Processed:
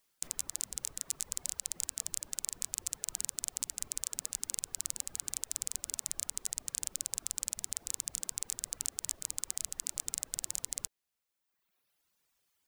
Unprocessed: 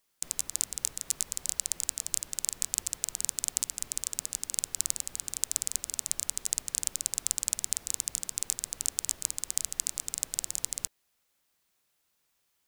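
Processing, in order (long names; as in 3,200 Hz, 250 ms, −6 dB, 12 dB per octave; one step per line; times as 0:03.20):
reverb reduction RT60 1.3 s
brickwall limiter −10.5 dBFS, peak gain reduction 8.5 dB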